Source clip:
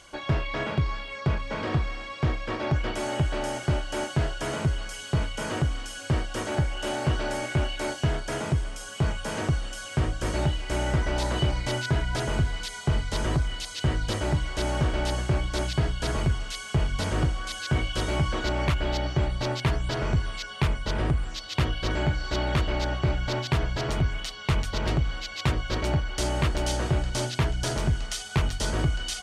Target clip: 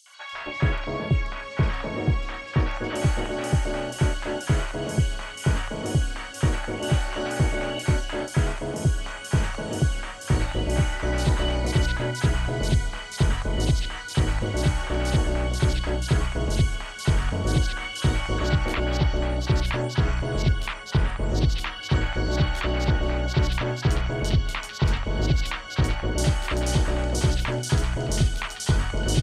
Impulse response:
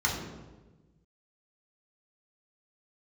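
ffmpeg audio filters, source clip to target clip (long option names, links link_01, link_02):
-filter_complex "[0:a]acrossover=split=860|4300[link_01][link_02][link_03];[link_02]adelay=60[link_04];[link_01]adelay=330[link_05];[link_05][link_04][link_03]amix=inputs=3:normalize=0,volume=3dB"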